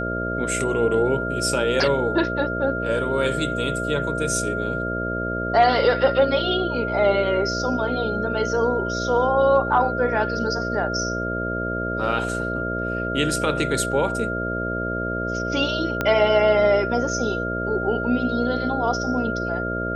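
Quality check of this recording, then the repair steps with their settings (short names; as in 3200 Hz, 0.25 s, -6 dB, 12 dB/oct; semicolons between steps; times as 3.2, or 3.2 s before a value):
buzz 60 Hz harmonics 11 -28 dBFS
tone 1400 Hz -27 dBFS
16.01 pop -9 dBFS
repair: de-click; de-hum 60 Hz, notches 11; notch 1400 Hz, Q 30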